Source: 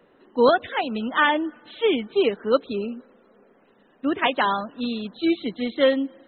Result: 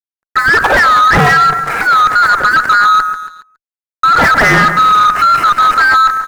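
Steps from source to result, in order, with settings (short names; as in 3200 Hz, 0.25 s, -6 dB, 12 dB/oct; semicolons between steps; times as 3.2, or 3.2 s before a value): band-swap scrambler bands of 1000 Hz; sample leveller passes 3; dynamic EQ 1600 Hz, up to -5 dB, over -24 dBFS, Q 2; fuzz box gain 32 dB, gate -41 dBFS; AGC gain up to 5.5 dB; resonant high shelf 2300 Hz -13 dB, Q 3; level quantiser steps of 12 dB; notch 1500 Hz, Q 18; feedback echo 0.139 s, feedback 40%, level -11 dB; sample leveller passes 2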